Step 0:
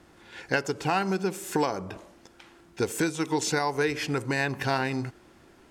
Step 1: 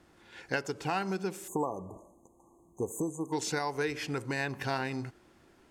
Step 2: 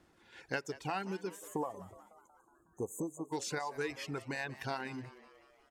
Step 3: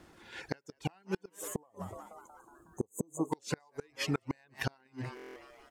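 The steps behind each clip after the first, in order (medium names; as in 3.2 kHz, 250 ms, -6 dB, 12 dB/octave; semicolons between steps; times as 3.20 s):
spectral selection erased 1.48–3.33 s, 1.2–6.2 kHz; trim -6 dB
reverb removal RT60 1.3 s; frequency-shifting echo 184 ms, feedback 59%, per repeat +110 Hz, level -17 dB; trim -4.5 dB
inverted gate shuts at -29 dBFS, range -34 dB; buffer glitch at 5.15 s, samples 1024, times 8; trim +9 dB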